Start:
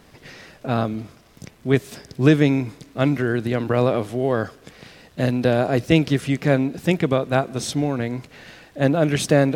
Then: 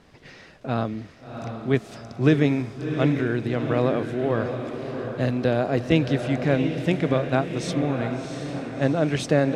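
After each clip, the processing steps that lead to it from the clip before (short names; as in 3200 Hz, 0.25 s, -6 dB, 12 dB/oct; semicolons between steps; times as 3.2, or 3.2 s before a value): air absorption 57 m; diffused feedback echo 0.701 s, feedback 49%, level -7 dB; gain -3.5 dB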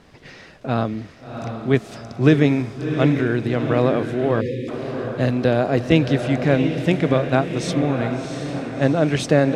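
spectral delete 4.41–4.68, 550–1700 Hz; gain +4 dB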